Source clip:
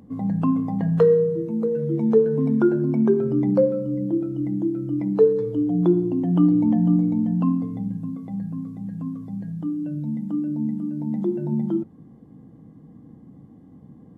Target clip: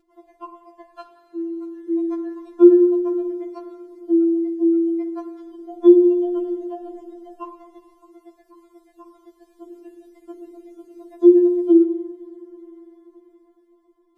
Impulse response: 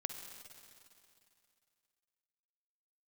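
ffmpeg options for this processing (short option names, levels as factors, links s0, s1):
-filter_complex "[0:a]dynaudnorm=f=520:g=7:m=3.55,asplit=2[s0][s1];[1:a]atrim=start_sample=2205[s2];[s1][s2]afir=irnorm=-1:irlink=0,volume=0.794[s3];[s0][s3]amix=inputs=2:normalize=0,afftfilt=real='re*4*eq(mod(b,16),0)':imag='im*4*eq(mod(b,16),0)':win_size=2048:overlap=0.75,volume=0.398"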